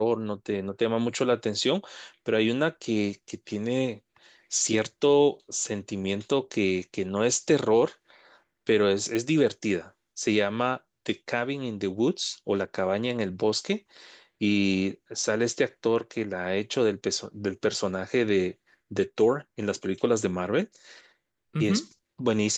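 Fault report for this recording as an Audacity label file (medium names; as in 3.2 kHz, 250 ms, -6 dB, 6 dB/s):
9.150000	9.150000	pop -16 dBFS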